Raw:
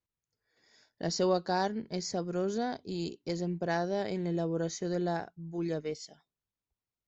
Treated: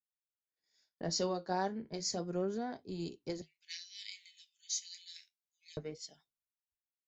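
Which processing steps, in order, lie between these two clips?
3.41–5.77 s: Chebyshev high-pass 2.1 kHz, order 5; compression 2.5:1, threshold -46 dBFS, peak gain reduction 15 dB; flange 0.33 Hz, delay 6.6 ms, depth 9.9 ms, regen -62%; three bands expanded up and down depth 100%; trim +8.5 dB

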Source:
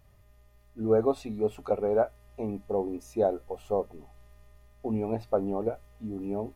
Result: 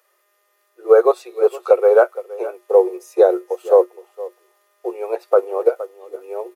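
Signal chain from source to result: rippled Chebyshev high-pass 350 Hz, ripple 9 dB; treble shelf 4.5 kHz +10 dB; echo from a far wall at 80 m, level -12 dB; loudness maximiser +20.5 dB; upward expansion 1.5:1, over -29 dBFS

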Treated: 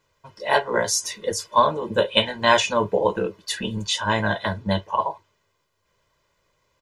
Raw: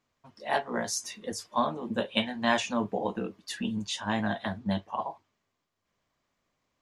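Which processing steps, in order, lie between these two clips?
comb 2 ms, depth 71%; trim +8 dB

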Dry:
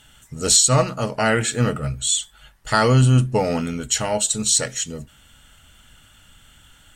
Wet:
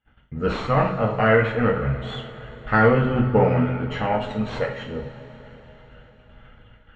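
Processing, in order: single-diode clipper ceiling -13 dBFS; phaser 0.31 Hz, delay 2.3 ms, feedback 27%; low-pass 2.3 kHz 24 dB/octave; gate -50 dBFS, range -27 dB; two-slope reverb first 0.44 s, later 4.5 s, from -18 dB, DRR 0 dB

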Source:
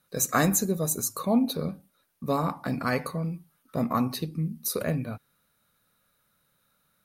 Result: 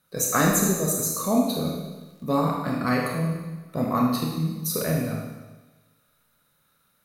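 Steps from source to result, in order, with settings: 1.70–2.57 s: crackle 25 per s -46 dBFS; Schroeder reverb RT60 1.2 s, combs from 25 ms, DRR -1 dB

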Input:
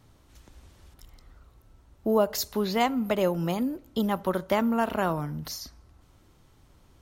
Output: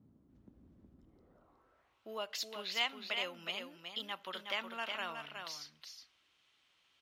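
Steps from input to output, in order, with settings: band-stop 880 Hz, Q 26; band-pass sweep 220 Hz -> 2.9 kHz, 0.99–2.00 s; delay 367 ms -6 dB; trim +2 dB

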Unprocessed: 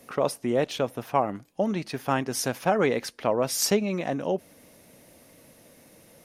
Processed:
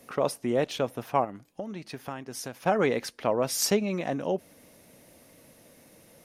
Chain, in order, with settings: 1.24–2.66 s: compression 3:1, threshold -35 dBFS, peak gain reduction 12.5 dB; trim -1.5 dB

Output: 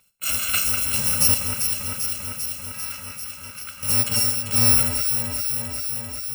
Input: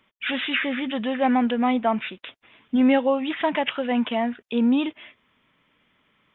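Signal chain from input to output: bit-reversed sample order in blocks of 128 samples; 1.34–3.83 s: ladder band-pass 1.8 kHz, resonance 25%; echo whose repeats swap between lows and highs 197 ms, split 2.5 kHz, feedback 86%, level -5 dB; Schroeder reverb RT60 0.5 s, combs from 32 ms, DRR 10.5 dB; trim +2.5 dB

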